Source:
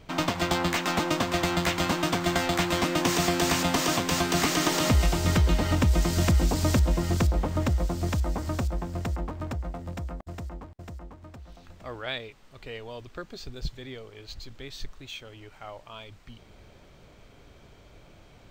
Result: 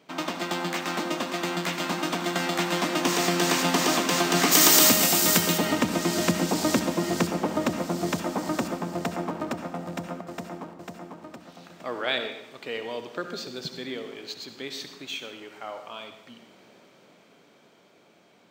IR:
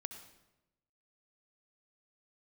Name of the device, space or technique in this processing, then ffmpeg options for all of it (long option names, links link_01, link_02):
far laptop microphone: -filter_complex "[0:a]asplit=3[link_01][link_02][link_03];[link_01]afade=type=out:start_time=4.51:duration=0.02[link_04];[link_02]aemphasis=mode=production:type=75fm,afade=type=in:start_time=4.51:duration=0.02,afade=type=out:start_time=5.57:duration=0.02[link_05];[link_03]afade=type=in:start_time=5.57:duration=0.02[link_06];[link_04][link_05][link_06]amix=inputs=3:normalize=0[link_07];[1:a]atrim=start_sample=2205[link_08];[link_07][link_08]afir=irnorm=-1:irlink=0,highpass=frequency=190:width=0.5412,highpass=frequency=190:width=1.3066,dynaudnorm=framelen=460:gausssize=13:maxgain=9.5dB"